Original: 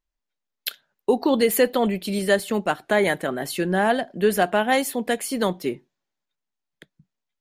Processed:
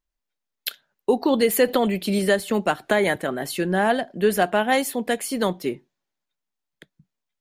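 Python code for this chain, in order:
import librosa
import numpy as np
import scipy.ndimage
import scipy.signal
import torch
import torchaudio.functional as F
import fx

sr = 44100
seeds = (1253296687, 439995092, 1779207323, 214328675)

y = fx.band_squash(x, sr, depth_pct=70, at=(1.68, 3.16))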